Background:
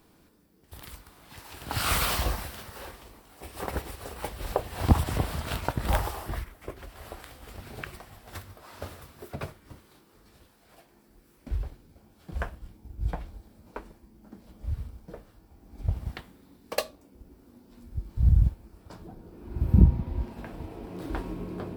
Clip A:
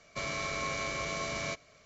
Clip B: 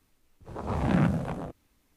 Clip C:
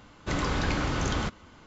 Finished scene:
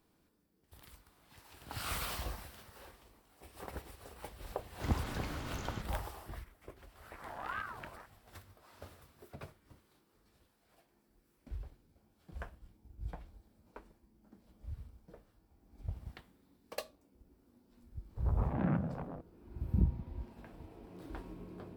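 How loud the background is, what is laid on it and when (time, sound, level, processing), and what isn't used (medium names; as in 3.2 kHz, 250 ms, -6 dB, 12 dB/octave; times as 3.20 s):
background -12.5 dB
4.53 s: add C -14.5 dB
6.55 s: add B -14.5 dB + ring modulator with a swept carrier 1.1 kHz, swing 30%, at 1.9 Hz
17.70 s: add B -8.5 dB + low-pass 1.7 kHz
not used: A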